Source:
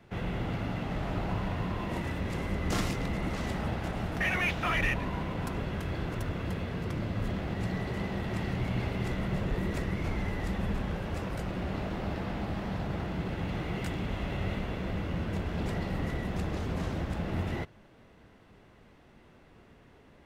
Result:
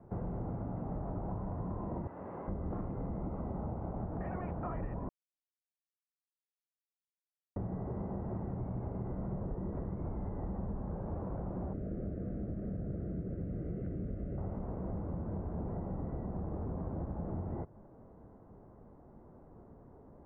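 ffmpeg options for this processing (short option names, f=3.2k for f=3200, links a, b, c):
-filter_complex "[0:a]asettb=1/sr,asplit=3[a][b][c];[a]atrim=end=2.074[d];[b]atrim=start=2.07:end=2.48,asetpts=PTS-STARTPTS,afade=t=in:d=0.004:c=qsin,afade=t=out:st=0.406:d=0.004:c=qsin,highpass=f=980:p=1[e];[c]atrim=start=2.476[f];[d][e]acrossfade=d=0.004:c1=hsin:c2=qsin[g];[g][f]acrossfade=d=0.004:c1=qsin:c2=hsin,asettb=1/sr,asplit=3[h][i][j];[h]atrim=end=3.224[k];[i]atrim=start=3.22:end=3.96,asetpts=PTS-STARTPTS,afade=t=in:d=0.004:c=qsin,afade=t=out:st=0.736:d=0.004:c=qsin,bandreject=f=1.7k:w=6.4[l];[j]atrim=start=3.956[m];[k][l]acrossfade=d=0.004:c1=hsin:c2=qsin[n];[n][m]acrossfade=d=0.004:c1=qsin:c2=hsin,asettb=1/sr,asplit=3[o][p][q];[o]atrim=end=11.734[r];[p]atrim=start=11.73:end=14.38,asetpts=PTS-STARTPTS,afade=t=in:d=0.004:c=qsin,afade=t=out:st=2.646:d=0.004:c=qsin,asuperstop=centerf=930:order=4:qfactor=0.98[s];[q]atrim=start=14.376[t];[r][s]acrossfade=d=0.004:c1=hsin:c2=qsin[u];[u][t]acrossfade=d=0.004:c1=qsin:c2=hsin,asplit=3[v][w][x];[v]atrim=end=5.09,asetpts=PTS-STARTPTS,afade=t=out:st=5.086:d=0.004:c=hsin[y];[w]atrim=start=5.09:end=7.56,asetpts=PTS-STARTPTS,volume=0[z];[x]atrim=start=7.56,asetpts=PTS-STARTPTS,afade=t=in:d=0.004:c=hsin[aa];[y][z][aa]concat=n=3:v=0:a=1,lowpass=f=1k:w=0.5412,lowpass=f=1k:w=1.3066,acompressor=threshold=-37dB:ratio=6,volume=2dB"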